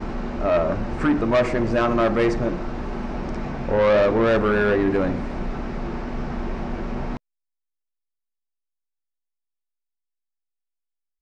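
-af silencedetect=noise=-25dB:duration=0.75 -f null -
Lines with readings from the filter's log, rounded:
silence_start: 7.17
silence_end: 11.21 | silence_duration: 4.04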